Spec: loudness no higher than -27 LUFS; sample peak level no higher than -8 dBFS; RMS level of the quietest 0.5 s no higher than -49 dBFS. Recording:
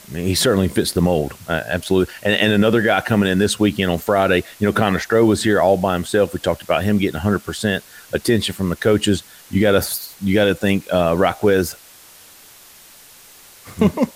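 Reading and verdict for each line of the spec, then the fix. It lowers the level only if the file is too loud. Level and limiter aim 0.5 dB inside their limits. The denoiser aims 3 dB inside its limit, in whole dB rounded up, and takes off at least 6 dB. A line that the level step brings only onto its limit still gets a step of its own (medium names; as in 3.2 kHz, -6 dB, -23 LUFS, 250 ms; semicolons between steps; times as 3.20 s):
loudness -18.0 LUFS: fail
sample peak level -4.5 dBFS: fail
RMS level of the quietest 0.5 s -45 dBFS: fail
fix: trim -9.5 dB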